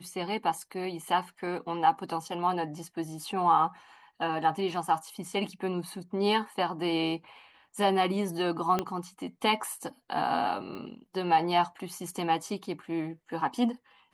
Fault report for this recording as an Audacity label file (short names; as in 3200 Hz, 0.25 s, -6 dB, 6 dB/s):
8.790000	8.790000	pop -14 dBFS
10.750000	10.750000	pop -29 dBFS